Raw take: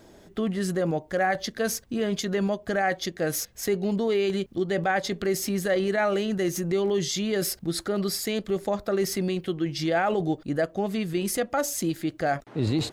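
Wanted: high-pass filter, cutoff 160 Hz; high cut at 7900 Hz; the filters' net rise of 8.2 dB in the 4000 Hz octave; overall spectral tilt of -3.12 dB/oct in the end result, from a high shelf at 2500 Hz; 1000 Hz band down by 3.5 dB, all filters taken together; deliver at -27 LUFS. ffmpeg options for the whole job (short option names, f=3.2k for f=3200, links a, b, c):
-af "highpass=160,lowpass=7.9k,equalizer=f=1k:t=o:g=-6.5,highshelf=f=2.5k:g=4.5,equalizer=f=4k:t=o:g=7,volume=-0.5dB"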